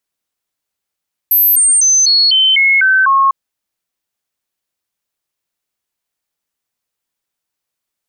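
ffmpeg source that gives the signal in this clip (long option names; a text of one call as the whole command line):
ffmpeg -f lavfi -i "aevalsrc='0.447*clip(min(mod(t,0.25),0.25-mod(t,0.25))/0.005,0,1)*sin(2*PI*12300*pow(2,-floor(t/0.25)/2)*mod(t,0.25))':duration=2:sample_rate=44100" out.wav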